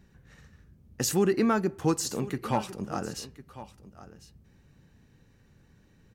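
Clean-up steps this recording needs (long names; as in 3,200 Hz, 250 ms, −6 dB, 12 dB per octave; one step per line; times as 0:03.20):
clipped peaks rebuilt −14.5 dBFS
echo removal 1,051 ms −16.5 dB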